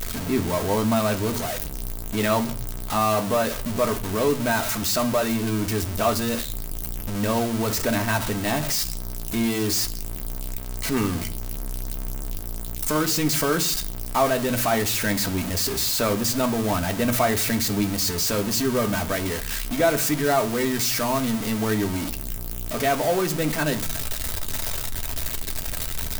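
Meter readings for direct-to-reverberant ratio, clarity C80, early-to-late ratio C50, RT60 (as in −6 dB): 4.5 dB, 22.5 dB, 18.0 dB, 0.45 s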